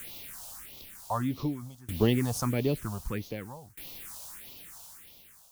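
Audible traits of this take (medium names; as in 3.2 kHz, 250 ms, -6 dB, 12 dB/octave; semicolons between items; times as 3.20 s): a quantiser's noise floor 8-bit, dither triangular; phasing stages 4, 1.6 Hz, lowest notch 320–1600 Hz; tremolo saw down 0.53 Hz, depth 95%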